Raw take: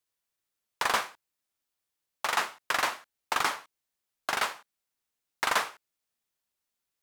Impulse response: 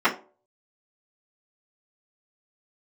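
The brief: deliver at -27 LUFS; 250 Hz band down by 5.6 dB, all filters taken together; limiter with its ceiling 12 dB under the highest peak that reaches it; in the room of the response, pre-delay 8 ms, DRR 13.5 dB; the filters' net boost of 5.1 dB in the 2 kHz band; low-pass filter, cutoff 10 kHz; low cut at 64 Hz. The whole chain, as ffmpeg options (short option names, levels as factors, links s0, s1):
-filter_complex "[0:a]highpass=64,lowpass=10000,equalizer=f=250:t=o:g=-8,equalizer=f=2000:t=o:g=6.5,alimiter=limit=0.0841:level=0:latency=1,asplit=2[s0][s1];[1:a]atrim=start_sample=2205,adelay=8[s2];[s1][s2]afir=irnorm=-1:irlink=0,volume=0.0251[s3];[s0][s3]amix=inputs=2:normalize=0,volume=2.37"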